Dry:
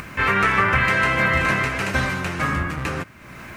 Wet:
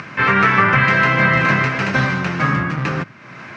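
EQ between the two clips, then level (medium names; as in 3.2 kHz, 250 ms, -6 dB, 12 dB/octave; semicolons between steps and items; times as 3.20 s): Chebyshev band-pass 120–5600 Hz, order 3; dynamic bell 160 Hz, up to +7 dB, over -41 dBFS, Q 0.8; peaking EQ 1.5 kHz +3 dB 1.7 oct; +2.0 dB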